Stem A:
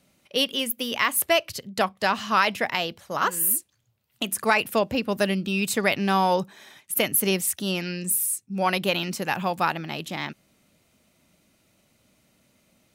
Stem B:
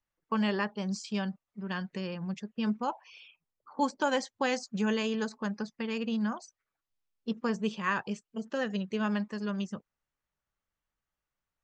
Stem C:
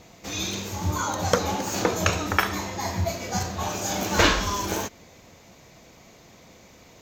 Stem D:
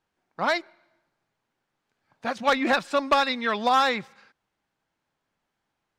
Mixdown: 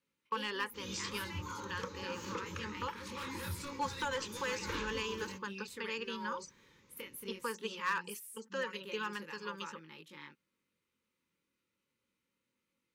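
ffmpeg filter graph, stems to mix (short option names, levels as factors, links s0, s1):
-filter_complex "[0:a]bass=f=250:g=-9,treble=f=4000:g=-7,volume=0.188[s0];[1:a]highpass=540,agate=range=0.447:threshold=0.00224:ratio=16:detection=peak,asoftclip=type=hard:threshold=0.0631,volume=1.06,asplit=2[s1][s2];[2:a]highshelf=f=7000:g=-11.5,adelay=500,volume=0.178[s3];[3:a]aemphasis=mode=production:type=75kf,asoftclip=type=tanh:threshold=0.0631,adelay=700,volume=0.376[s4];[s2]apad=whole_len=294998[s5];[s4][s5]sidechaincompress=threshold=0.0126:ratio=8:attack=16:release=243[s6];[s1][s3]amix=inputs=2:normalize=0,alimiter=level_in=1.33:limit=0.0631:level=0:latency=1:release=346,volume=0.75,volume=1[s7];[s0][s6]amix=inputs=2:normalize=0,flanger=delay=18.5:depth=7.2:speed=0.21,acompressor=threshold=0.00708:ratio=2.5,volume=1[s8];[s7][s8]amix=inputs=2:normalize=0,asuperstop=centerf=690:order=12:qfactor=2.4"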